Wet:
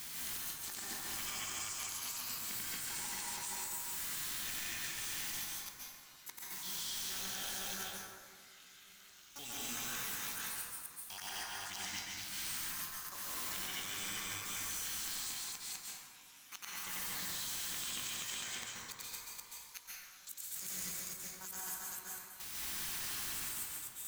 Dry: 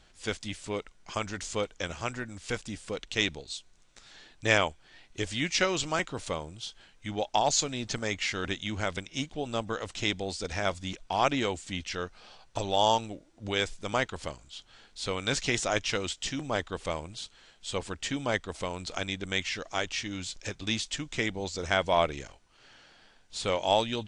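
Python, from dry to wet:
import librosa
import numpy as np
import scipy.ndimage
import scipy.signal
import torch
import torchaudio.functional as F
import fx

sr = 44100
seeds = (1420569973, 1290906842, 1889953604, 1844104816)

p1 = fx.pitch_trill(x, sr, semitones=11.0, every_ms=138)
p2 = F.preemphasis(torch.from_numpy(p1), 0.97).numpy()
p3 = fx.transient(p2, sr, attack_db=-12, sustain_db=8)
p4 = fx.quant_dither(p3, sr, seeds[0], bits=8, dither='triangular')
p5 = p3 + (p4 * librosa.db_to_amplitude(-3.0))
p6 = fx.gate_flip(p5, sr, shuts_db=-27.0, range_db=-33)
p7 = fx.doubler(p6, sr, ms=21.0, db=-14)
p8 = p7 + fx.echo_multitap(p7, sr, ms=(91, 230, 477, 679), db=(-6.0, -7.5, -8.0, -13.5), dry=0)
p9 = fx.level_steps(p8, sr, step_db=18)
p10 = fx.peak_eq(p9, sr, hz=540.0, db=-10.5, octaves=1.1)
p11 = fx.rev_plate(p10, sr, seeds[1], rt60_s=1.7, hf_ratio=0.45, predelay_ms=120, drr_db=-6.5)
y = p11 * librosa.db_to_amplitude(8.0)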